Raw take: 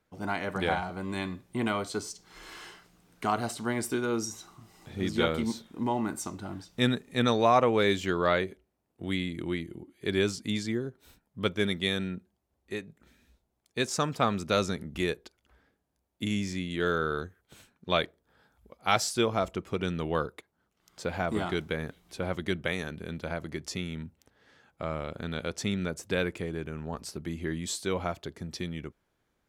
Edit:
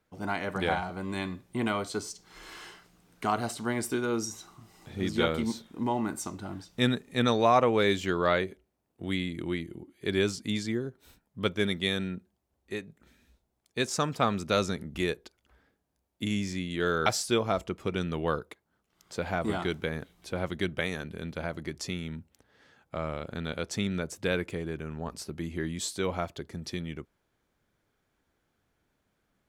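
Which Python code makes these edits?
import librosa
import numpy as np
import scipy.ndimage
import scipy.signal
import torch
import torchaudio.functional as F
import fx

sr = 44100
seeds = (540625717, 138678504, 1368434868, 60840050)

y = fx.edit(x, sr, fx.cut(start_s=17.06, length_s=1.87), tone=tone)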